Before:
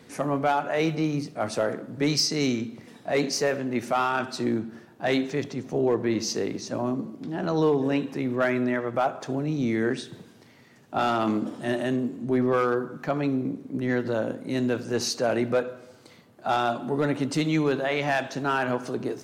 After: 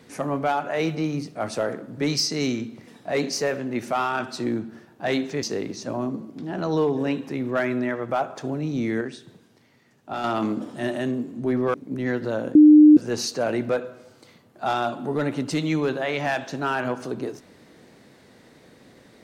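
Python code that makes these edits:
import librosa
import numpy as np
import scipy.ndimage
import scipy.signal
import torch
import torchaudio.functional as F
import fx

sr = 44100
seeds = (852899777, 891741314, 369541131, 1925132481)

y = fx.edit(x, sr, fx.cut(start_s=5.43, length_s=0.85),
    fx.clip_gain(start_s=9.86, length_s=1.23, db=-5.5),
    fx.cut(start_s=12.59, length_s=0.98),
    fx.bleep(start_s=14.38, length_s=0.42, hz=302.0, db=-7.0), tone=tone)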